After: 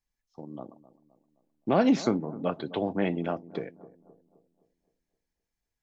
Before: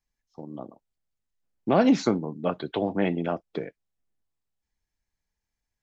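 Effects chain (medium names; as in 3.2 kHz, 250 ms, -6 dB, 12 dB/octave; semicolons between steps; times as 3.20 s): bucket-brigade echo 260 ms, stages 2048, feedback 45%, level -17.5 dB; trim -2.5 dB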